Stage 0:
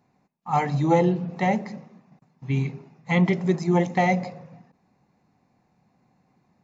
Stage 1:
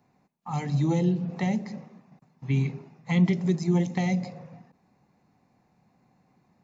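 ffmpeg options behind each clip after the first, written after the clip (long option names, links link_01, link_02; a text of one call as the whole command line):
ffmpeg -i in.wav -filter_complex "[0:a]acrossover=split=310|3000[link_01][link_02][link_03];[link_02]acompressor=threshold=-36dB:ratio=5[link_04];[link_01][link_04][link_03]amix=inputs=3:normalize=0" out.wav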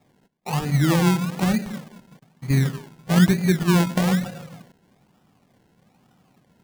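ffmpeg -i in.wav -af "acrusher=samples=29:mix=1:aa=0.000001:lfo=1:lforange=17.4:lforate=1.1,volume=5.5dB" out.wav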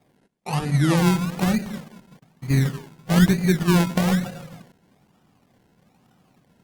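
ffmpeg -i in.wav -ar 48000 -c:a libopus -b:a 32k out.opus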